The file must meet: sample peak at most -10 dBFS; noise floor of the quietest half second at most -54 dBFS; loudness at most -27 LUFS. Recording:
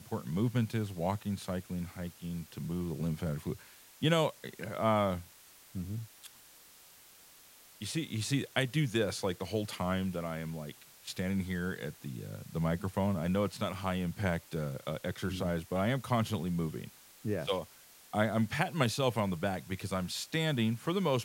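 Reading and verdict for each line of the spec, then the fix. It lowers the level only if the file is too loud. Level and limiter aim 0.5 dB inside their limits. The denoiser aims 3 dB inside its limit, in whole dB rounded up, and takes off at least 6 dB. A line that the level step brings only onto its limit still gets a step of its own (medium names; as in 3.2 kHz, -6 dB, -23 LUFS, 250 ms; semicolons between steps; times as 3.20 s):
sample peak -12.5 dBFS: pass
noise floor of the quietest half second -58 dBFS: pass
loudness -34.5 LUFS: pass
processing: none needed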